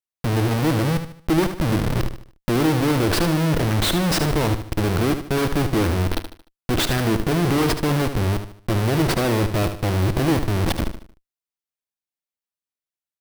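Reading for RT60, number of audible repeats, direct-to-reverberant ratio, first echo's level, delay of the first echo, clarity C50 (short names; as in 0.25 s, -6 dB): none, 4, none, -9.5 dB, 75 ms, none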